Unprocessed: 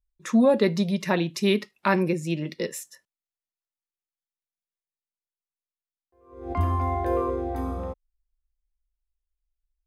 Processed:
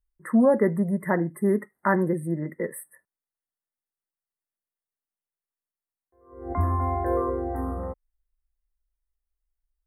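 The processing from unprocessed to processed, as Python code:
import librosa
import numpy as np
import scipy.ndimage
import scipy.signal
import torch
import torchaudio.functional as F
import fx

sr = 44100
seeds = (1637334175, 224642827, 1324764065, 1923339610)

y = fx.brickwall_bandstop(x, sr, low_hz=2100.0, high_hz=8000.0)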